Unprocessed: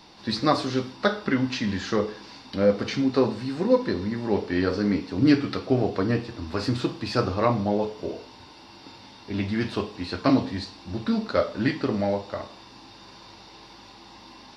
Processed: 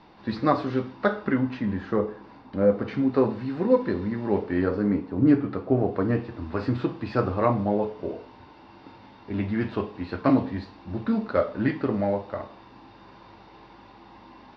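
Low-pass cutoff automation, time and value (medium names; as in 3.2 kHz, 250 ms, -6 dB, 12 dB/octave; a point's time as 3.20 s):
1.18 s 2 kHz
1.68 s 1.3 kHz
2.57 s 1.3 kHz
3.48 s 2.2 kHz
4.24 s 2.2 kHz
5.11 s 1.2 kHz
5.66 s 1.2 kHz
6.23 s 2 kHz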